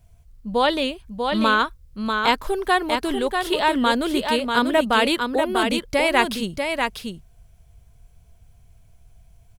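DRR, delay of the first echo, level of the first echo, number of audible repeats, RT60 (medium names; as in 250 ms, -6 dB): no reverb, 642 ms, -5.0 dB, 1, no reverb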